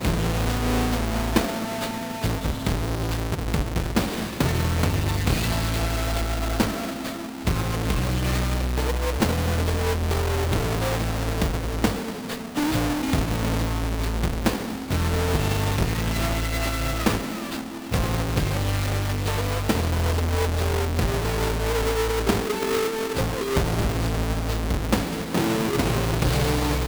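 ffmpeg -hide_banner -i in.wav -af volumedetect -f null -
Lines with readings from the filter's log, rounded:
mean_volume: -23.7 dB
max_volume: -10.2 dB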